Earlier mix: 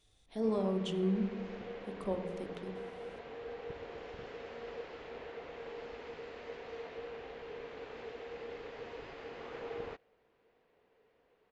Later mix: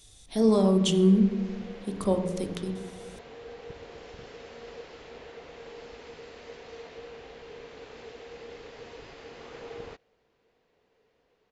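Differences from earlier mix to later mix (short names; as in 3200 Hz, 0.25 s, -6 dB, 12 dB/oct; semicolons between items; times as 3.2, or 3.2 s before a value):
speech +9.5 dB; master: add tone controls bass +4 dB, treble +13 dB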